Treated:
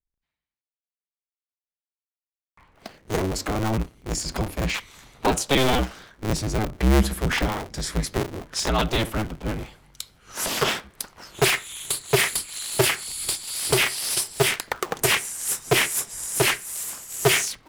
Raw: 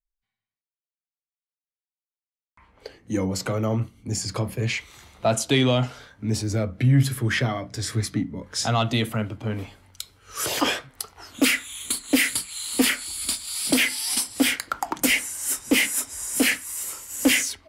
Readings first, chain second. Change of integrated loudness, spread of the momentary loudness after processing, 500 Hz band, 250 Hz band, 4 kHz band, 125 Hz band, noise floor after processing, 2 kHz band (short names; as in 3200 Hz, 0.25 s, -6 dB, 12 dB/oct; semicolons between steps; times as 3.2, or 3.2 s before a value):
0.0 dB, 10 LU, +3.0 dB, -3.5 dB, +0.5 dB, -3.0 dB, under -85 dBFS, 0.0 dB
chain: cycle switcher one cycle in 2, inverted